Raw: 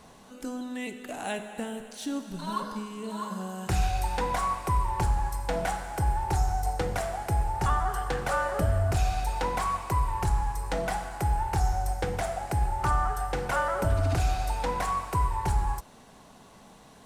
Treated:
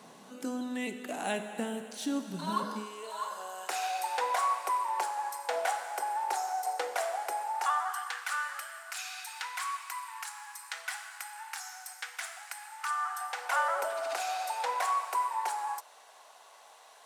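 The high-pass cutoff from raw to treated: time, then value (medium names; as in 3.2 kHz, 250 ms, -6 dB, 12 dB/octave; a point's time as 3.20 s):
high-pass 24 dB/octave
2.66 s 160 Hz
3.08 s 530 Hz
7.32 s 530 Hz
8.32 s 1.3 kHz
12.85 s 1.3 kHz
13.76 s 600 Hz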